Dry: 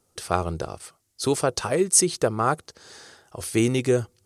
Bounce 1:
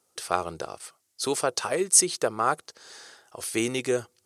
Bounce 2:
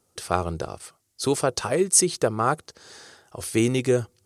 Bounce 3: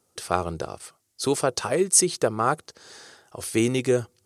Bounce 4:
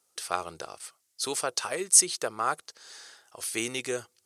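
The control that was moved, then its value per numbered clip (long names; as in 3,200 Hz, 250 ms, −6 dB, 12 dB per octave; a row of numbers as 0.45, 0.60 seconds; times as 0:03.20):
high-pass filter, corner frequency: 550, 46, 130, 1,500 Hertz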